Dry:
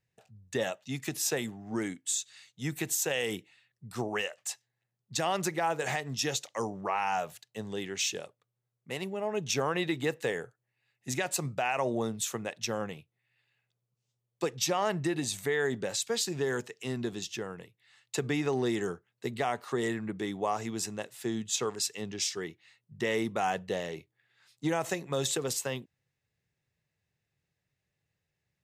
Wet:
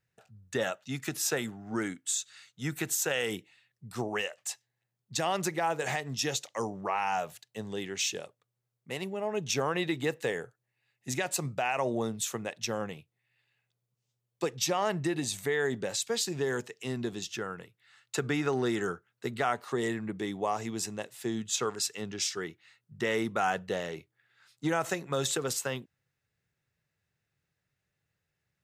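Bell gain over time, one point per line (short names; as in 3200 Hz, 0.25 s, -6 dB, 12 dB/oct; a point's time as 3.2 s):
bell 1400 Hz 0.38 oct
+9 dB
from 3.29 s 0 dB
from 17.26 s +9.5 dB
from 19.53 s -0.5 dB
from 21.39 s +7.5 dB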